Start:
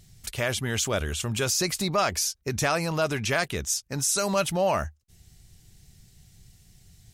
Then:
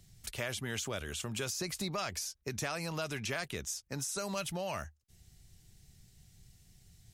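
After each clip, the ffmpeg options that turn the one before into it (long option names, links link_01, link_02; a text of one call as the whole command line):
ffmpeg -i in.wav -filter_complex "[0:a]acrossover=split=150|1800[link_01][link_02][link_03];[link_01]acompressor=threshold=-41dB:ratio=4[link_04];[link_02]acompressor=threshold=-31dB:ratio=4[link_05];[link_03]acompressor=threshold=-31dB:ratio=4[link_06];[link_04][link_05][link_06]amix=inputs=3:normalize=0,volume=-6dB" out.wav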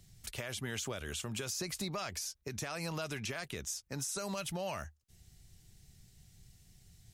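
ffmpeg -i in.wav -af "alimiter=level_in=3.5dB:limit=-24dB:level=0:latency=1:release=103,volume=-3.5dB" out.wav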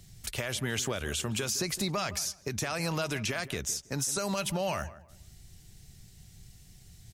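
ffmpeg -i in.wav -filter_complex "[0:a]asplit=2[link_01][link_02];[link_02]adelay=162,lowpass=frequency=1500:poles=1,volume=-15dB,asplit=2[link_03][link_04];[link_04]adelay=162,lowpass=frequency=1500:poles=1,volume=0.28,asplit=2[link_05][link_06];[link_06]adelay=162,lowpass=frequency=1500:poles=1,volume=0.28[link_07];[link_01][link_03][link_05][link_07]amix=inputs=4:normalize=0,volume=7dB" out.wav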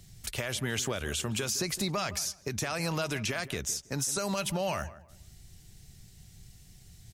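ffmpeg -i in.wav -af anull out.wav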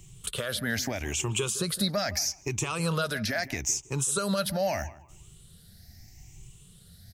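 ffmpeg -i in.wav -af "afftfilt=real='re*pow(10,14/40*sin(2*PI*(0.69*log(max(b,1)*sr/1024/100)/log(2)-(0.78)*(pts-256)/sr)))':imag='im*pow(10,14/40*sin(2*PI*(0.69*log(max(b,1)*sr/1024/100)/log(2)-(0.78)*(pts-256)/sr)))':win_size=1024:overlap=0.75" out.wav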